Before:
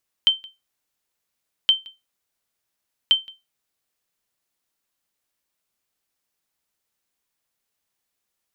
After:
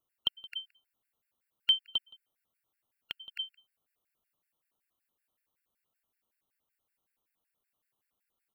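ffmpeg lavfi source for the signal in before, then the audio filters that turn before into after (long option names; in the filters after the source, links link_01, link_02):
-f lavfi -i "aevalsrc='0.422*(sin(2*PI*3110*mod(t,1.42))*exp(-6.91*mod(t,1.42)/0.21)+0.0596*sin(2*PI*3110*max(mod(t,1.42)-0.17,0))*exp(-6.91*max(mod(t,1.42)-0.17,0)/0.21))':duration=4.26:sample_rate=44100"
-filter_complex "[0:a]equalizer=frequency=5800:width_type=o:width=1.4:gain=-13,asplit=2[link_01][link_02];[link_02]aecho=0:1:264:0.447[link_03];[link_01][link_03]amix=inputs=2:normalize=0,afftfilt=real='re*gt(sin(2*PI*5.3*pts/sr)*(1-2*mod(floor(b*sr/1024/1400),2)),0)':imag='im*gt(sin(2*PI*5.3*pts/sr)*(1-2*mod(floor(b*sr/1024/1400),2)),0)':win_size=1024:overlap=0.75"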